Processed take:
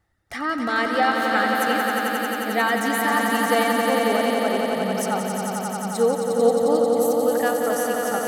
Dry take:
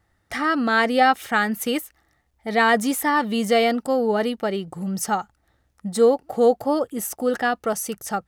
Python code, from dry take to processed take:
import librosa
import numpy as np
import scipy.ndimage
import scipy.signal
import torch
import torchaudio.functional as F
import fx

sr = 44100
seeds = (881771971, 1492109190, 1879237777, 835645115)

y = fx.dereverb_blind(x, sr, rt60_s=1.9)
y = fx.echo_swell(y, sr, ms=89, loudest=5, wet_db=-6.0)
y = y * 10.0 ** (-3.5 / 20.0)